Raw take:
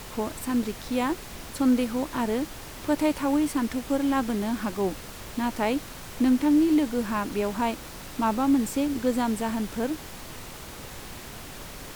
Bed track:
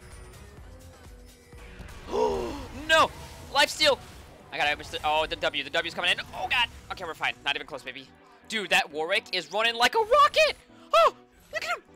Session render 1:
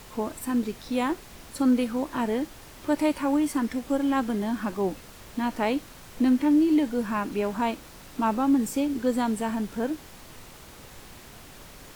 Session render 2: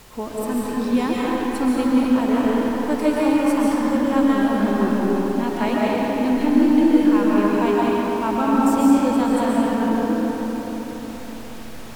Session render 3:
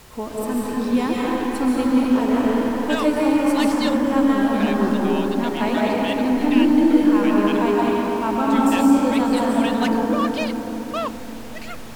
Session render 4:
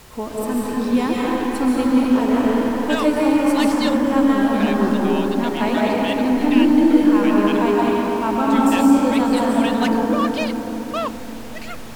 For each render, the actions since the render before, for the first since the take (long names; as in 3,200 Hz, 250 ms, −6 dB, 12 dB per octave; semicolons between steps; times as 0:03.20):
noise reduction from a noise print 6 dB
comb and all-pass reverb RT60 4.6 s, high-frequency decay 0.55×, pre-delay 100 ms, DRR −6.5 dB
mix in bed track −7 dB
level +1.5 dB